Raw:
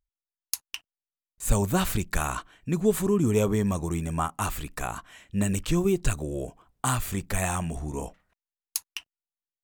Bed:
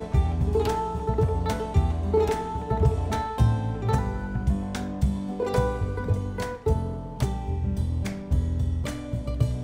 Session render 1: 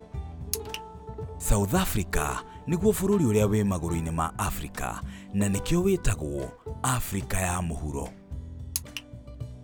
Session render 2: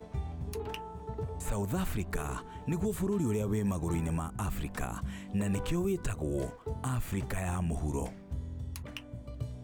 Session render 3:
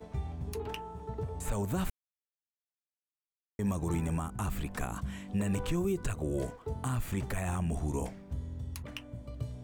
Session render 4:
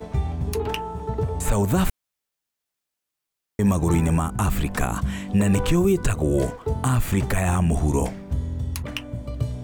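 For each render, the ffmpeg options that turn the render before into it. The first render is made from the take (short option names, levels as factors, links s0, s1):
-filter_complex "[1:a]volume=0.2[s0];[0:a][s0]amix=inputs=2:normalize=0"
-filter_complex "[0:a]acrossover=split=410|2900|6200[s0][s1][s2][s3];[s0]acompressor=threshold=0.0447:ratio=4[s4];[s1]acompressor=threshold=0.0141:ratio=4[s5];[s2]acompressor=threshold=0.00126:ratio=4[s6];[s3]acompressor=threshold=0.00447:ratio=4[s7];[s4][s5][s6][s7]amix=inputs=4:normalize=0,alimiter=limit=0.0708:level=0:latency=1:release=39"
-filter_complex "[0:a]asplit=3[s0][s1][s2];[s0]atrim=end=1.9,asetpts=PTS-STARTPTS,afade=t=out:st=1.896:d=0.004:c=hsin[s3];[s1]atrim=start=1.9:end=3.59,asetpts=PTS-STARTPTS,volume=0[s4];[s2]atrim=start=3.59,asetpts=PTS-STARTPTS,afade=t=in:d=0.004:c=hsin[s5];[s3][s4][s5]concat=n=3:v=0:a=1"
-af "volume=3.98"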